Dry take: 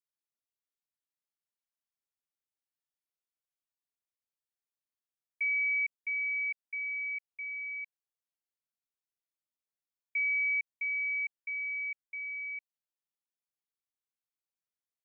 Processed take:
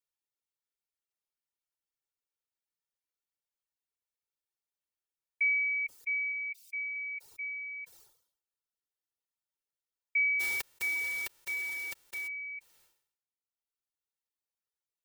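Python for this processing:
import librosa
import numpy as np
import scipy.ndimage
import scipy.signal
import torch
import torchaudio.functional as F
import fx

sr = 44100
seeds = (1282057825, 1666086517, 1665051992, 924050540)

y = fx.envelope_flatten(x, sr, power=0.1, at=(10.39, 12.27), fade=0.02)
y = fx.dereverb_blind(y, sr, rt60_s=1.7)
y = fx.steep_highpass(y, sr, hz=2200.0, slope=96, at=(6.32, 6.96))
y = y + 0.5 * np.pad(y, (int(2.2 * sr / 1000.0), 0))[:len(y)]
y = fx.sustainer(y, sr, db_per_s=92.0)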